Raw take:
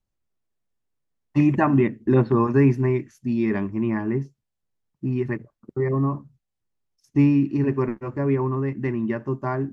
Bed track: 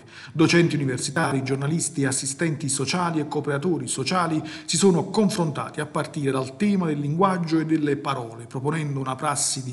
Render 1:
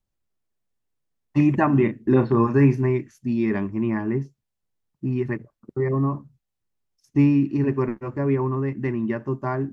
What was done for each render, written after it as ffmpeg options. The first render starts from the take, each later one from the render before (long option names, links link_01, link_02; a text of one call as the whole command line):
ffmpeg -i in.wav -filter_complex "[0:a]asettb=1/sr,asplit=3[link_01][link_02][link_03];[link_01]atrim=end=1.714[link_04];[link_02]atrim=start=1.71:end=2.83,asetpts=PTS-STARTPTS,afade=type=in:duration=0.004:curve=qsin,afade=type=out:start_time=1.116:duration=0.004:curve=qsin,asplit=2[link_05][link_06];[link_06]adelay=35,volume=-9dB[link_07];[link_05][link_07]amix=inputs=2:normalize=0,atrim=end_sample=49392[link_08];[link_03]atrim=start=2.826[link_09];[link_04][link_08]acrossfade=duration=0.004:curve1=hsin:curve2=qsin[link_10];[link_10][link_09]acrossfade=duration=0.004:curve1=qsin:curve2=hsin" out.wav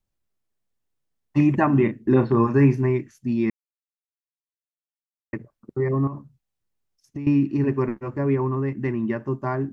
ffmpeg -i in.wav -filter_complex "[0:a]asettb=1/sr,asplit=3[link_01][link_02][link_03];[link_01]atrim=end=6.074[link_04];[link_02]atrim=start=6.07:end=7.27,asetpts=PTS-STARTPTS,afade=type=in:duration=0.004:curve=qsin,afade=type=out:start_time=1.196:duration=0.004:curve=qsin,acompressor=threshold=-28dB:ratio=10:attack=3.2:release=140:knee=1:detection=peak[link_05];[link_03]atrim=start=7.266[link_06];[link_04][link_05]acrossfade=duration=0.004:curve1=hsin:curve2=qsin[link_07];[link_07][link_06]acrossfade=duration=0.004:curve1=qsin:curve2=hsin,asplit=3[link_08][link_09][link_10];[link_08]atrim=end=3.5,asetpts=PTS-STARTPTS,afade=type=out:start_time=3.496:duration=0.004:curve=hsin[link_11];[link_09]atrim=start=3.5:end=5.33,asetpts=PTS-STARTPTS,volume=0[link_12];[link_10]atrim=start=5.33,asetpts=PTS-STARTPTS,afade=type=in:duration=0.004:curve=hsin[link_13];[link_11][link_12][link_13]concat=n=3:v=0:a=1" out.wav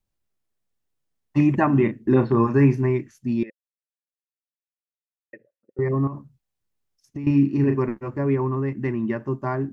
ffmpeg -i in.wav -filter_complex "[0:a]asettb=1/sr,asplit=3[link_01][link_02][link_03];[link_01]atrim=end=3.434[link_04];[link_02]atrim=start=3.43:end=5.79,asetpts=PTS-STARTPTS,afade=type=in:duration=0.004:curve=qsin,afade=type=out:start_time=2.356:duration=0.004:curve=qsin,asplit=3[link_05][link_06][link_07];[link_05]bandpass=frequency=530:width_type=q:width=8,volume=0dB[link_08];[link_06]bandpass=frequency=1840:width_type=q:width=8,volume=-6dB[link_09];[link_07]bandpass=frequency=2480:width_type=q:width=8,volume=-9dB[link_10];[link_08][link_09][link_10]amix=inputs=3:normalize=0[link_11];[link_03]atrim=start=5.786[link_12];[link_04][link_11]acrossfade=duration=0.004:curve1=hsin:curve2=qsin[link_13];[link_13][link_12]acrossfade=duration=0.004:curve1=qsin:curve2=hsin,asettb=1/sr,asplit=3[link_14][link_15][link_16];[link_14]atrim=end=7.204[link_17];[link_15]atrim=start=7.2:end=7.79,asetpts=PTS-STARTPTS,afade=type=in:duration=0.004:curve=qsin,afade=type=out:start_time=0.586:duration=0.004:curve=qsin,asplit=2[link_18][link_19];[link_19]adelay=36,volume=-7dB[link_20];[link_18][link_20]amix=inputs=2:normalize=0,atrim=end_sample=26019[link_21];[link_16]atrim=start=7.786[link_22];[link_17][link_21]acrossfade=duration=0.004:curve1=hsin:curve2=qsin[link_23];[link_23][link_22]acrossfade=duration=0.004:curve1=qsin:curve2=hsin" out.wav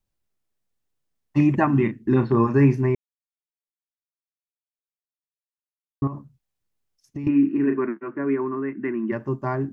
ffmpeg -i in.wav -filter_complex "[0:a]asettb=1/sr,asplit=3[link_01][link_02][link_03];[link_01]atrim=end=1.654[link_04];[link_02]atrim=start=1.65:end=2.3,asetpts=PTS-STARTPTS,afade=type=in:duration=0.004:curve=qsin,afade=type=out:start_time=0.646:duration=0.004:curve=qsin,equalizer=frequency=560:width=1.9:gain=-8.5[link_05];[link_03]atrim=start=2.296[link_06];[link_04][link_05]acrossfade=duration=0.004:curve1=hsin:curve2=qsin[link_07];[link_07][link_06]acrossfade=duration=0.004:curve1=qsin:curve2=hsin,asplit=3[link_08][link_09][link_10];[link_08]afade=type=out:start_time=7.27:duration=0.02[link_11];[link_09]highpass=frequency=210:width=0.5412,highpass=frequency=210:width=1.3066,equalizer=frequency=330:width_type=q:width=4:gain=4,equalizer=frequency=510:width_type=q:width=4:gain=-9,equalizer=frequency=820:width_type=q:width=4:gain=-8,equalizer=frequency=1500:width_type=q:width=4:gain=7,lowpass=frequency=2600:width=0.5412,lowpass=frequency=2600:width=1.3066,afade=type=in:start_time=7.27:duration=0.02,afade=type=out:start_time=9.11:duration=0.02[link_12];[link_10]afade=type=in:start_time=9.11:duration=0.02[link_13];[link_11][link_12][link_13]amix=inputs=3:normalize=0,asplit=3[link_14][link_15][link_16];[link_14]atrim=end=2.95,asetpts=PTS-STARTPTS,afade=type=out:start_time=2.946:duration=0.004:curve=hsin[link_17];[link_15]atrim=start=2.95:end=6.02,asetpts=PTS-STARTPTS,volume=0[link_18];[link_16]atrim=start=6.02,asetpts=PTS-STARTPTS,afade=type=in:duration=0.004:curve=hsin[link_19];[link_17][link_18][link_19]concat=n=3:v=0:a=1" out.wav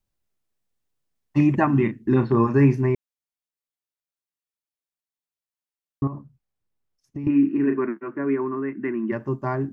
ffmpeg -i in.wav -filter_complex "[0:a]asettb=1/sr,asplit=3[link_01][link_02][link_03];[link_01]atrim=end=6.034[link_04];[link_02]atrim=start=6.03:end=7.3,asetpts=PTS-STARTPTS,afade=type=in:duration=0.004:curve=qsin,afade=type=out:start_time=1.266:duration=0.004:curve=qsin,highshelf=frequency=2400:gain=-9[link_05];[link_03]atrim=start=7.296[link_06];[link_04][link_05]acrossfade=duration=0.004:curve1=hsin:curve2=qsin[link_07];[link_07][link_06]acrossfade=duration=0.004:curve1=qsin:curve2=hsin" out.wav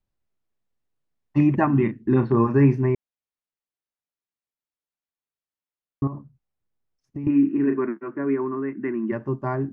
ffmpeg -i in.wav -af "lowpass=frequency=2300:poles=1" out.wav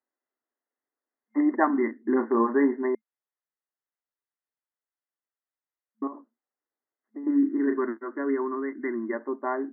ffmpeg -i in.wav -af "afftfilt=real='re*between(b*sr/4096,220,2100)':imag='im*between(b*sr/4096,220,2100)':win_size=4096:overlap=0.75,aemphasis=mode=production:type=bsi" out.wav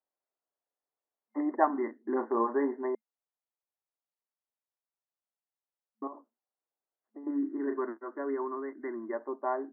ffmpeg -i in.wav -af "bandpass=frequency=700:width_type=q:width=1.3:csg=0" out.wav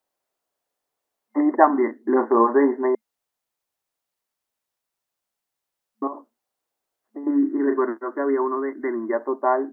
ffmpeg -i in.wav -af "volume=11.5dB,alimiter=limit=-1dB:level=0:latency=1" out.wav